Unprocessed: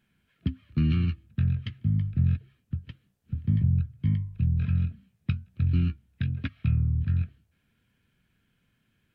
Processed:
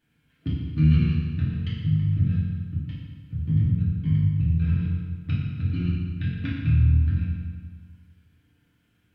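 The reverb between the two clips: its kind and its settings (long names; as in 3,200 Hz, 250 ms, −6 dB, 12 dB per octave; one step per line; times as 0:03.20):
feedback delay network reverb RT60 1.6 s, low-frequency decay 1.1×, high-frequency decay 0.85×, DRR −8 dB
level −5 dB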